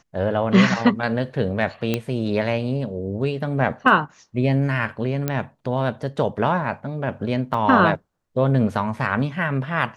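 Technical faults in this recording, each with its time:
0:01.94: click −8 dBFS
0:05.28: click −9 dBFS
0:07.54: drop-out 3.3 ms

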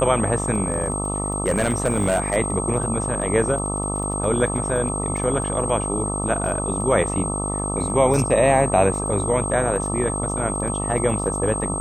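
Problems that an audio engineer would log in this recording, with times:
mains buzz 50 Hz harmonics 26 −27 dBFS
surface crackle 12 per second −31 dBFS
whistle 8,400 Hz −27 dBFS
0:00.64–0:02.37: clipping −14 dBFS
0:05.17: drop-out 2.1 ms
0:08.14: drop-out 3 ms

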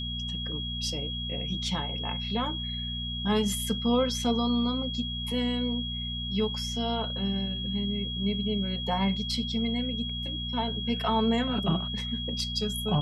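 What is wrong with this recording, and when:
mains hum 60 Hz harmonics 4 −36 dBFS
whistle 3,300 Hz −34 dBFS

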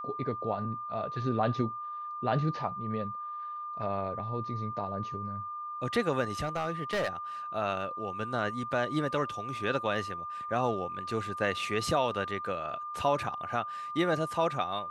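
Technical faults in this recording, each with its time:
whistle 1,200 Hz −36 dBFS
0:06.43–0:07.09: clipping −26 dBFS

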